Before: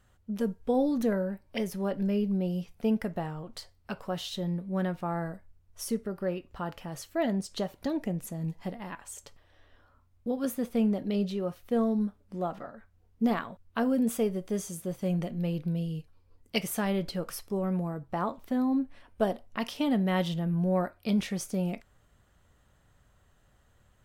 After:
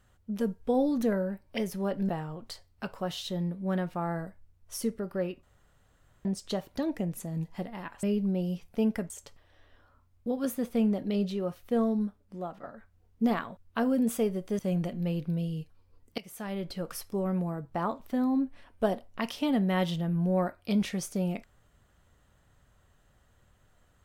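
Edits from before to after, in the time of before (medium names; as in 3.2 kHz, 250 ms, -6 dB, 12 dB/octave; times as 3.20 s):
2.09–3.16 s: move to 9.10 s
6.50–7.32 s: room tone
11.85–12.63 s: fade out, to -7.5 dB
14.59–14.97 s: delete
16.56–17.37 s: fade in, from -20 dB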